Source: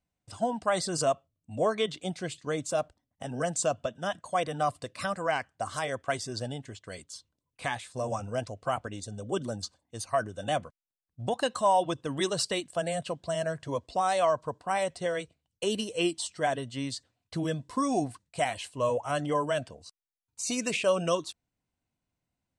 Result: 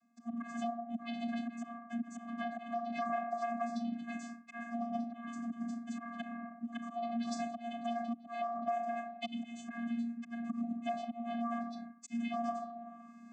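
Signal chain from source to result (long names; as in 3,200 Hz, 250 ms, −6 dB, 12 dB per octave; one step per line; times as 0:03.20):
low-shelf EQ 140 Hz −8.5 dB
mains-hum notches 60/120/180/240/300 Hz
convolution reverb RT60 1.1 s, pre-delay 3 ms, DRR −7.5 dB
phase-vocoder stretch with locked phases 0.59×
volume swells 517 ms
low-shelf EQ 450 Hz −7 dB
phaser swept by the level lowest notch 560 Hz, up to 4,000 Hz, full sweep at −22.5 dBFS
reversed playback
upward compression, threshold −41 dBFS
reversed playback
channel vocoder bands 16, square 234 Hz
downward compressor 5 to 1, threshold −41 dBFS, peak gain reduction 18 dB
level +6 dB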